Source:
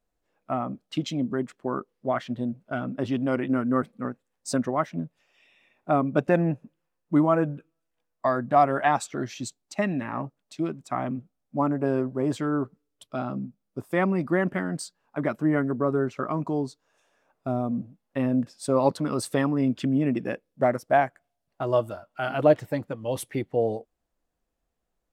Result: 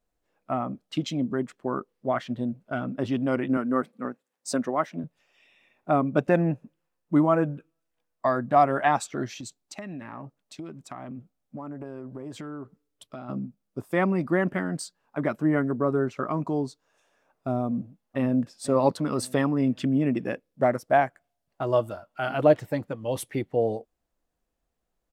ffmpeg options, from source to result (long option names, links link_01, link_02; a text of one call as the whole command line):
ffmpeg -i in.wav -filter_complex "[0:a]asettb=1/sr,asplit=3[link_01][link_02][link_03];[link_01]atrim=end=3.574[link_04];[link_02]atrim=start=3.57:end=5.04,asetpts=PTS-STARTPTS,afade=type=in:duration=0.004:curve=qsin,afade=type=out:start_time=1.466:duration=0.004:curve=qsin,highpass=210[link_05];[link_03]atrim=start=5.036[link_06];[link_04][link_05]acrossfade=duration=0.004:curve1=hsin:curve2=qsin[link_07];[link_07][link_06]acrossfade=duration=0.004:curve1=qsin:curve2=hsin,asplit=3[link_08][link_09][link_10];[link_08]afade=type=out:start_time=9.32:duration=0.02[link_11];[link_09]acompressor=threshold=-34dB:ratio=8:attack=3.2:release=140:knee=1:detection=peak,afade=type=in:start_time=9.32:duration=0.02,afade=type=out:start_time=13.28:duration=0.02[link_12];[link_10]afade=type=in:start_time=13.28:duration=0.02[link_13];[link_11][link_12][link_13]amix=inputs=3:normalize=0,asplit=2[link_14][link_15];[link_15]afade=type=in:start_time=17.64:duration=0.01,afade=type=out:start_time=18.39:duration=0.01,aecho=0:1:500|1000|1500|2000:0.141254|0.0635642|0.0286039|0.0128717[link_16];[link_14][link_16]amix=inputs=2:normalize=0" out.wav